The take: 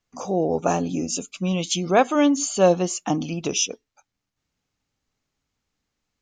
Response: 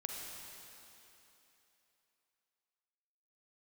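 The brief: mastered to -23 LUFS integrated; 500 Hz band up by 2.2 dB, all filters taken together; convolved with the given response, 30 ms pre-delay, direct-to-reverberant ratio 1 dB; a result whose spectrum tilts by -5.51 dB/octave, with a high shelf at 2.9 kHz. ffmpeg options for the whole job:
-filter_complex "[0:a]equalizer=f=500:t=o:g=3,highshelf=f=2900:g=-9,asplit=2[s0][s1];[1:a]atrim=start_sample=2205,adelay=30[s2];[s1][s2]afir=irnorm=-1:irlink=0,volume=0.891[s3];[s0][s3]amix=inputs=2:normalize=0,volume=0.668"

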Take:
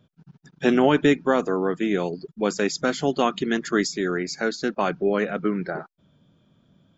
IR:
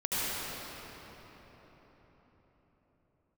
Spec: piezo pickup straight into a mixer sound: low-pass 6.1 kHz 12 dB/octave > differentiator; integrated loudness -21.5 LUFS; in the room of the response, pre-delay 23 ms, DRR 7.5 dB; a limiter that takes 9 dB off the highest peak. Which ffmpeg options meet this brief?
-filter_complex "[0:a]alimiter=limit=0.178:level=0:latency=1,asplit=2[s0][s1];[1:a]atrim=start_sample=2205,adelay=23[s2];[s1][s2]afir=irnorm=-1:irlink=0,volume=0.126[s3];[s0][s3]amix=inputs=2:normalize=0,lowpass=6100,aderivative,volume=10"

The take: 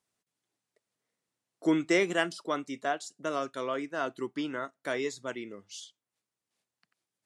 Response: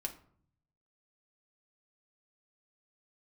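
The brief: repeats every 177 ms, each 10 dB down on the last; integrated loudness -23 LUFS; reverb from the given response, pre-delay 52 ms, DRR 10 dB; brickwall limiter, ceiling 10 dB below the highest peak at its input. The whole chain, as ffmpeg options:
-filter_complex "[0:a]alimiter=limit=0.0891:level=0:latency=1,aecho=1:1:177|354|531|708:0.316|0.101|0.0324|0.0104,asplit=2[s0][s1];[1:a]atrim=start_sample=2205,adelay=52[s2];[s1][s2]afir=irnorm=-1:irlink=0,volume=0.335[s3];[s0][s3]amix=inputs=2:normalize=0,volume=3.55"

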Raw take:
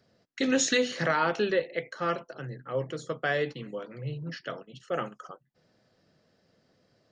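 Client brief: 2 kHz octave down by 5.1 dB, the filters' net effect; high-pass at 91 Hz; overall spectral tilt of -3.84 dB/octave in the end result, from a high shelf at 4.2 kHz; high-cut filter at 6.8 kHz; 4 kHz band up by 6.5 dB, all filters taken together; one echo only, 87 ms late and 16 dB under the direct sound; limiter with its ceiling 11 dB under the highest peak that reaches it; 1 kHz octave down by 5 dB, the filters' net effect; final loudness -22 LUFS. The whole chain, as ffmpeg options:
-af "highpass=91,lowpass=6800,equalizer=f=1000:t=o:g=-5,equalizer=f=2000:t=o:g=-8,equalizer=f=4000:t=o:g=7,highshelf=f=4200:g=6.5,alimiter=limit=0.0794:level=0:latency=1,aecho=1:1:87:0.158,volume=3.98"

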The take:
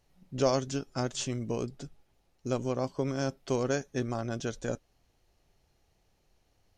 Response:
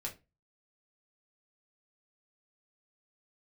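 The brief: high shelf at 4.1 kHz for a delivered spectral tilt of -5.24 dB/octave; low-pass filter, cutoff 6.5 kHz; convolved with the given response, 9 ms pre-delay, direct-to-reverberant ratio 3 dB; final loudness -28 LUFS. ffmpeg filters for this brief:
-filter_complex "[0:a]lowpass=6500,highshelf=f=4100:g=7,asplit=2[s0][s1];[1:a]atrim=start_sample=2205,adelay=9[s2];[s1][s2]afir=irnorm=-1:irlink=0,volume=0.75[s3];[s0][s3]amix=inputs=2:normalize=0,volume=1.33"

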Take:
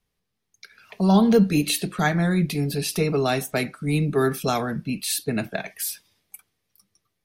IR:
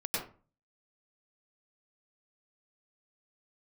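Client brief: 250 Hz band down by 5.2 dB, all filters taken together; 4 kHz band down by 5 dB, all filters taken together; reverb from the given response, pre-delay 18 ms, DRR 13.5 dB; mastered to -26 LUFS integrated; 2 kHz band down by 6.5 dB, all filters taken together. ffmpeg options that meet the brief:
-filter_complex "[0:a]equalizer=f=250:t=o:g=-7.5,equalizer=f=2000:t=o:g=-7.5,equalizer=f=4000:t=o:g=-4,asplit=2[s0][s1];[1:a]atrim=start_sample=2205,adelay=18[s2];[s1][s2]afir=irnorm=-1:irlink=0,volume=0.112[s3];[s0][s3]amix=inputs=2:normalize=0,volume=1.06"

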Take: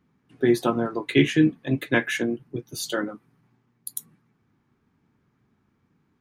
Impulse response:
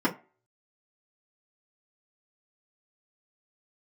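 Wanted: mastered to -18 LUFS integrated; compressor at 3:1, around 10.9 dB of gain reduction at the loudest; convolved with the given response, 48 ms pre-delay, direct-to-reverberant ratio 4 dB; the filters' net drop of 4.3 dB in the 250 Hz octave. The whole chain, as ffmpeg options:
-filter_complex "[0:a]equalizer=f=250:t=o:g=-6,acompressor=threshold=0.0251:ratio=3,asplit=2[s0][s1];[1:a]atrim=start_sample=2205,adelay=48[s2];[s1][s2]afir=irnorm=-1:irlink=0,volume=0.158[s3];[s0][s3]amix=inputs=2:normalize=0,volume=4.73"

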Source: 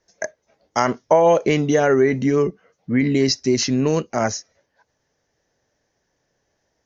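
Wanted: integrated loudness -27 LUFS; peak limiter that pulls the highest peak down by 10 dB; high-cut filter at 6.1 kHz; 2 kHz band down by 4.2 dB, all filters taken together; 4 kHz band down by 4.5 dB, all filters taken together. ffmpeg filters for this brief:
-af "lowpass=6100,equalizer=f=2000:t=o:g=-4.5,equalizer=f=4000:t=o:g=-3.5,volume=0.631,alimiter=limit=0.141:level=0:latency=1"

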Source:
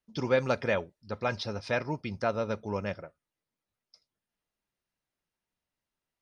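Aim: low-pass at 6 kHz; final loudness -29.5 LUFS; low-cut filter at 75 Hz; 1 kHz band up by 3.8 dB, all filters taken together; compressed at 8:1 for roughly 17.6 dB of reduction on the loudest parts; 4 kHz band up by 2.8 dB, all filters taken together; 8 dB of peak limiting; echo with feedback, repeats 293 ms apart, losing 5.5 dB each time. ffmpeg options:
-af "highpass=75,lowpass=6000,equalizer=f=1000:t=o:g=5,equalizer=f=4000:t=o:g=4,acompressor=threshold=0.0126:ratio=8,alimiter=level_in=2.37:limit=0.0631:level=0:latency=1,volume=0.422,aecho=1:1:293|586|879|1172|1465|1758|2051:0.531|0.281|0.149|0.079|0.0419|0.0222|0.0118,volume=5.62"

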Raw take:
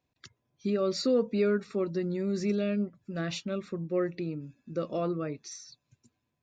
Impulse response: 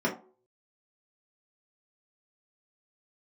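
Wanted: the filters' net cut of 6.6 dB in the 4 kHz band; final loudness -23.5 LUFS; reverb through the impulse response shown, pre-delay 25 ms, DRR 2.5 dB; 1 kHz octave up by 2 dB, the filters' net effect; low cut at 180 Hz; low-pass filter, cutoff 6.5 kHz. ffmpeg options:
-filter_complex "[0:a]highpass=180,lowpass=6500,equalizer=f=1000:t=o:g=3.5,equalizer=f=4000:t=o:g=-7.5,asplit=2[s0][s1];[1:a]atrim=start_sample=2205,adelay=25[s2];[s1][s2]afir=irnorm=-1:irlink=0,volume=0.211[s3];[s0][s3]amix=inputs=2:normalize=0,volume=1.41"

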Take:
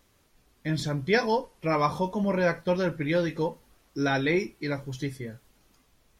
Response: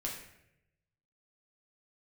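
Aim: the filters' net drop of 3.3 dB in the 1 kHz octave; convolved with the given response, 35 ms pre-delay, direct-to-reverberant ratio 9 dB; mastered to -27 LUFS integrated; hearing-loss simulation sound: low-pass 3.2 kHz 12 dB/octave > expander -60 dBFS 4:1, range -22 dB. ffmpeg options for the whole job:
-filter_complex "[0:a]equalizer=f=1000:t=o:g=-4,asplit=2[s0][s1];[1:a]atrim=start_sample=2205,adelay=35[s2];[s1][s2]afir=irnorm=-1:irlink=0,volume=0.299[s3];[s0][s3]amix=inputs=2:normalize=0,lowpass=3200,agate=range=0.0794:threshold=0.001:ratio=4,volume=1.19"

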